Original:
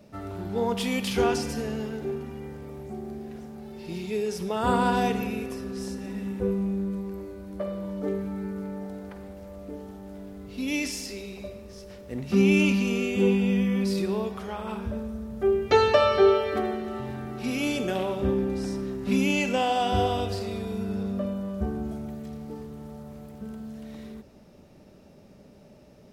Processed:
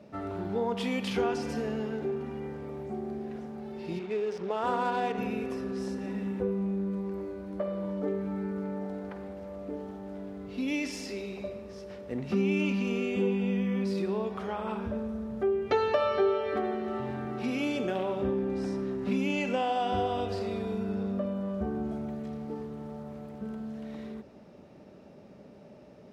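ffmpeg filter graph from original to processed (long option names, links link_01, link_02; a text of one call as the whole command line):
ffmpeg -i in.wav -filter_complex "[0:a]asettb=1/sr,asplit=3[link_01][link_02][link_03];[link_01]atrim=end=3.994[link_04];[link_02]atrim=start=3.99:end=5.18,asetpts=PTS-STARTPTS,afade=type=in:duration=0.004:curve=qsin,afade=type=out:start_time=1.186:duration=0.004:curve=qsin,bass=frequency=250:gain=-10,treble=frequency=4000:gain=4,acrusher=bits=8:dc=4:mix=0:aa=0.000001,adynamicsmooth=sensitivity=7:basefreq=1300[link_05];[link_03]atrim=start=5.176[link_06];[link_04][link_05]acrossfade=duration=0.004:curve1=hsin:curve2=qsin[link_07];[link_07][link_06]acrossfade=duration=0.004:curve1=qsin:curve2=hsin,highpass=frequency=190:poles=1,aemphasis=mode=reproduction:type=75kf,acompressor=threshold=-33dB:ratio=2,volume=3dB" out.wav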